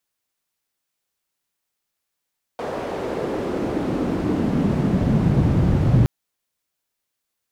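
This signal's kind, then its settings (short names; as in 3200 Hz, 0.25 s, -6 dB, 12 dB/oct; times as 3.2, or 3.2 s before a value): swept filtered noise pink, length 3.47 s bandpass, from 560 Hz, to 110 Hz, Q 1.6, exponential, gain ramp +13 dB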